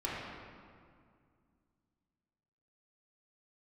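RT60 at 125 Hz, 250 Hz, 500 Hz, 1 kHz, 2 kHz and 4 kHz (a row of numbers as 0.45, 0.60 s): 2.9, 2.9, 2.2, 2.1, 1.8, 1.3 s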